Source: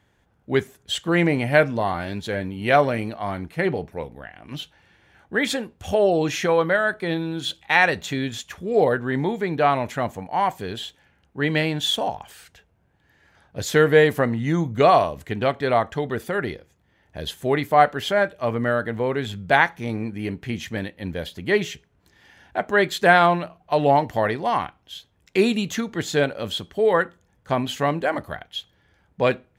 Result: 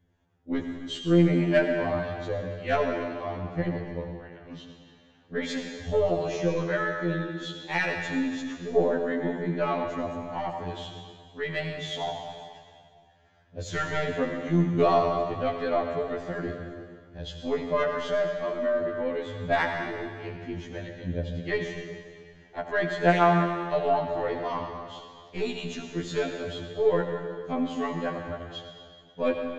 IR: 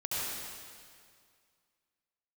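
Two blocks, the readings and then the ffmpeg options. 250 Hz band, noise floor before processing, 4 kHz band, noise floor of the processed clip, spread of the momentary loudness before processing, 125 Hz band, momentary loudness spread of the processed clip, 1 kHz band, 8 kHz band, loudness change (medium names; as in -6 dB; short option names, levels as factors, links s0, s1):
-3.5 dB, -64 dBFS, -9.5 dB, -56 dBFS, 15 LU, -4.0 dB, 17 LU, -8.0 dB, -11.5 dB, -6.0 dB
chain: -filter_complex "[0:a]acrossover=split=640|3000[s0][s1][s2];[s0]acontrast=53[s3];[s3][s1][s2]amix=inputs=3:normalize=0,aresample=16000,aresample=44100,aeval=exprs='1.12*(cos(1*acos(clip(val(0)/1.12,-1,1)))-cos(1*PI/2))+0.0891*(cos(3*acos(clip(val(0)/1.12,-1,1)))-cos(3*PI/2))+0.0316*(cos(6*acos(clip(val(0)/1.12,-1,1)))-cos(6*PI/2))':c=same,acrossover=split=670[s4][s5];[s4]aeval=exprs='val(0)*(1-0.5/2+0.5/2*cos(2*PI*1.7*n/s))':c=same[s6];[s5]aeval=exprs='val(0)*(1-0.5/2-0.5/2*cos(2*PI*1.7*n/s))':c=same[s7];[s6][s7]amix=inputs=2:normalize=0,asplit=2[s8][s9];[1:a]atrim=start_sample=2205[s10];[s9][s10]afir=irnorm=-1:irlink=0,volume=0.447[s11];[s8][s11]amix=inputs=2:normalize=0,afftfilt=real='re*2*eq(mod(b,4),0)':imag='im*2*eq(mod(b,4),0)':win_size=2048:overlap=0.75,volume=0.447"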